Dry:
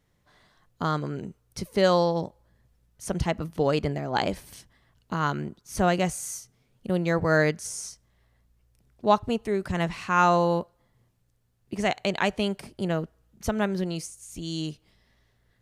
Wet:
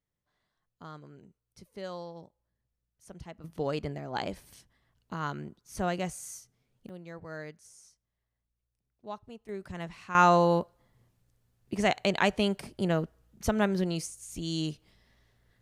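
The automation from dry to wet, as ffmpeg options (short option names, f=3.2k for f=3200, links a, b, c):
-af "asetnsamples=n=441:p=0,asendcmd='3.44 volume volume -8dB;6.89 volume volume -20dB;9.49 volume volume -12dB;10.15 volume volume -0.5dB',volume=-19dB"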